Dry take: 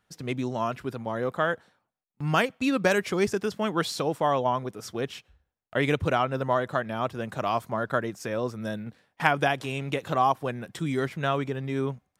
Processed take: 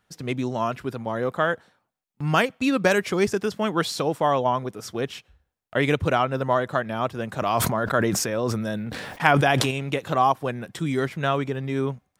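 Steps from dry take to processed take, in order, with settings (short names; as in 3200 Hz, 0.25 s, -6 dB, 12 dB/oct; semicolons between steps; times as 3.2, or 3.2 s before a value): 7.31–9.71 sustainer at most 25 dB/s; gain +3 dB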